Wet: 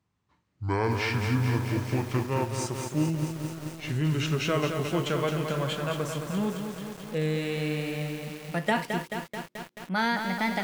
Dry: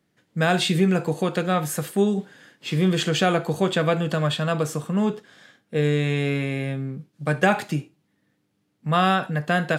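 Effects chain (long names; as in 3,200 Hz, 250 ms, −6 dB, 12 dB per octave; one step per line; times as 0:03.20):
gliding playback speed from 57% → 127%
feedback echo at a low word length 217 ms, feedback 80%, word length 6 bits, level −6 dB
level −7 dB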